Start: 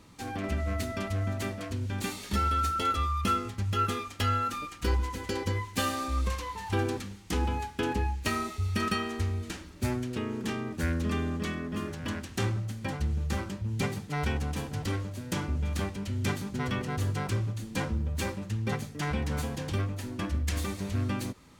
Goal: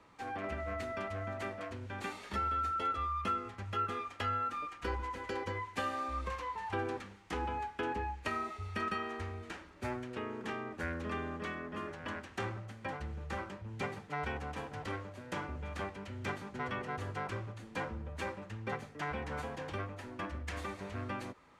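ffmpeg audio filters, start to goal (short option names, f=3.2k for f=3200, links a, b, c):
-filter_complex "[0:a]lowpass=10k,acrossover=split=430 2400:gain=0.224 1 0.2[a][b][c];[a][b][c]amix=inputs=3:normalize=0,acrossover=split=370[d][e];[e]acompressor=threshold=-36dB:ratio=2[f];[d][f]amix=inputs=2:normalize=0"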